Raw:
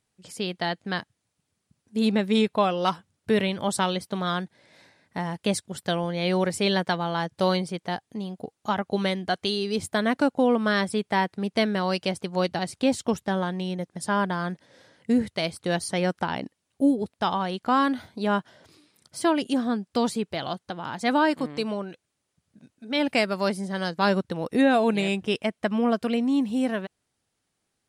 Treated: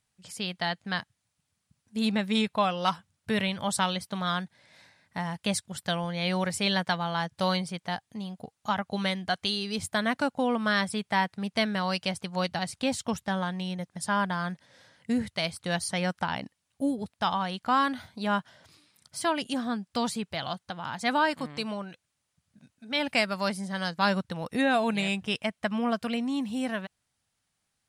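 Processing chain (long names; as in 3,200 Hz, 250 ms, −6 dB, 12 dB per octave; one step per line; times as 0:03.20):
parametric band 370 Hz −11 dB 1.2 octaves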